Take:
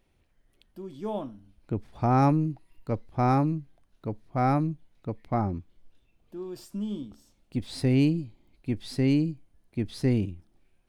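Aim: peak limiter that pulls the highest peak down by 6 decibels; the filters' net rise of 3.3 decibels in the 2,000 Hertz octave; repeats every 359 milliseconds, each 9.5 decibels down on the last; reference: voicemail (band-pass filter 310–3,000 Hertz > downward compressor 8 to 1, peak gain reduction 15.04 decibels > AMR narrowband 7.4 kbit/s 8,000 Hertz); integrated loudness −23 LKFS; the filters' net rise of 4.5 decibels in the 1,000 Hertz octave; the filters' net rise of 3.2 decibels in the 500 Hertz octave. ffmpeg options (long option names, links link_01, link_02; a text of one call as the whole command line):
ffmpeg -i in.wav -af "equalizer=frequency=500:width_type=o:gain=4,equalizer=frequency=1000:width_type=o:gain=4,equalizer=frequency=2000:width_type=o:gain=4,alimiter=limit=-15dB:level=0:latency=1,highpass=310,lowpass=3000,aecho=1:1:359|718|1077|1436:0.335|0.111|0.0365|0.012,acompressor=threshold=-35dB:ratio=8,volume=18.5dB" -ar 8000 -c:a libopencore_amrnb -b:a 7400 out.amr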